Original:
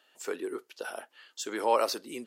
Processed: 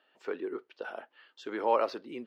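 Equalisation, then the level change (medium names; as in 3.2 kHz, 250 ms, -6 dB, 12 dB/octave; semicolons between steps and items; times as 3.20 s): distance through air 320 m; 0.0 dB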